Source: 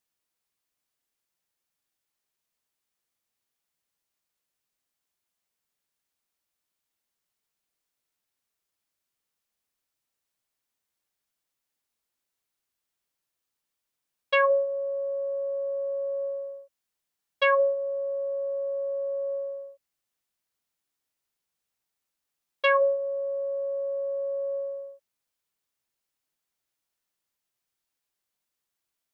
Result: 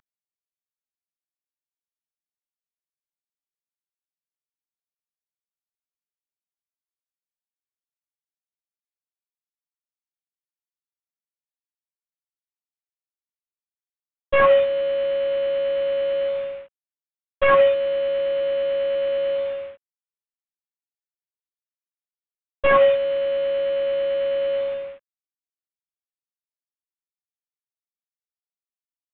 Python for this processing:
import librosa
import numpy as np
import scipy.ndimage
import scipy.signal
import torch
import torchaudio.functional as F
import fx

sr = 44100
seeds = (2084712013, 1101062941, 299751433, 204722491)

y = fx.cvsd(x, sr, bps=16000)
y = y * 10.0 ** (8.0 / 20.0)